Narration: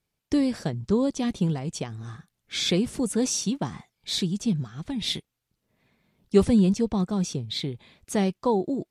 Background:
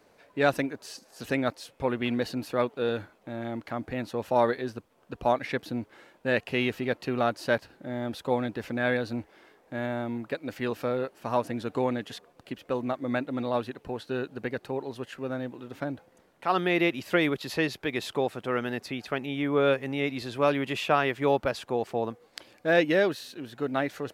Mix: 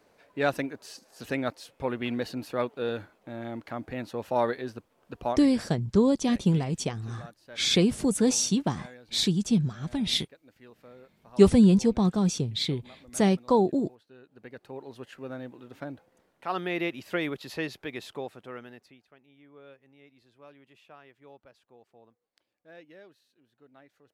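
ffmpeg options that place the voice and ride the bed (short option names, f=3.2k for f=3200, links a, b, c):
-filter_complex "[0:a]adelay=5050,volume=1.5dB[a];[1:a]volume=14dB,afade=t=out:st=5.21:d=0.29:silence=0.105925,afade=t=in:st=14.21:d=0.84:silence=0.149624,afade=t=out:st=17.74:d=1.31:silence=0.0749894[b];[a][b]amix=inputs=2:normalize=0"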